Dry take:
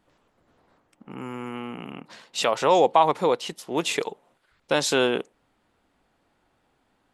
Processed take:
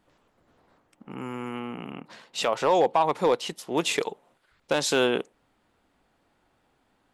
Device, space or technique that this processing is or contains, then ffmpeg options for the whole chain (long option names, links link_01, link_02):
limiter into clipper: -filter_complex "[0:a]alimiter=limit=-10dB:level=0:latency=1:release=261,asoftclip=type=hard:threshold=-13dB,asettb=1/sr,asplit=3[link_01][link_02][link_03];[link_01]atrim=end=1.594[link_04];[link_02]atrim=start=1.59:end=3.09,asetpts=PTS-STARTPTS,afade=type=in:duration=0.004:curve=qsin,afade=type=out:start_time=1.496:duration=0.004:curve=qsin,equalizer=frequency=7800:width=0.4:gain=-4[link_05];[link_03]atrim=start=3.086[link_06];[link_04][link_05]acrossfade=duration=0.004:curve1=hsin:curve2=qsin[link_07];[link_07][link_06]acrossfade=duration=0.004:curve1=qsin:curve2=hsin"